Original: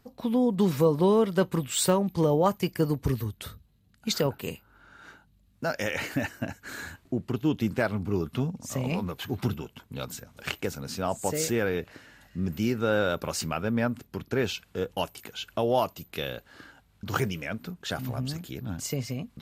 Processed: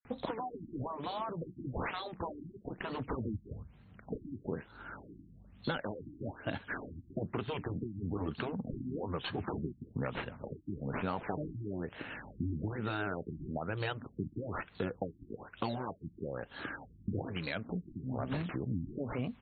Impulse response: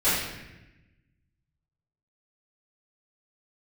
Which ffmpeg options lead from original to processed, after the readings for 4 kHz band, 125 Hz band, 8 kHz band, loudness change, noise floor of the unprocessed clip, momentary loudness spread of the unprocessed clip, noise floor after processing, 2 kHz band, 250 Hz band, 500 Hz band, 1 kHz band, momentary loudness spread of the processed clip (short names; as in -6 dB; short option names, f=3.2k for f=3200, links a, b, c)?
-12.0 dB, -8.5 dB, under -40 dB, -11.0 dB, -63 dBFS, 14 LU, -60 dBFS, -8.0 dB, -10.0 dB, -12.5 dB, -7.5 dB, 8 LU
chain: -filter_complex "[0:a]lowshelf=f=64:g=-7.5,acrusher=samples=8:mix=1:aa=0.000001:lfo=1:lforange=4.8:lforate=1.6,afftfilt=real='re*lt(hypot(re,im),0.224)':imag='im*lt(hypot(re,im),0.224)':win_size=1024:overlap=0.75,aemphasis=mode=production:type=cd,acompressor=threshold=-43dB:ratio=4,acrossover=split=4100[a][b];[a]adelay=50[c];[c][b]amix=inputs=2:normalize=0,afftfilt=real='re*lt(b*sr/1024,340*pow(4500/340,0.5+0.5*sin(2*PI*1.1*pts/sr)))':imag='im*lt(b*sr/1024,340*pow(4500/340,0.5+0.5*sin(2*PI*1.1*pts/sr)))':win_size=1024:overlap=0.75,volume=10dB"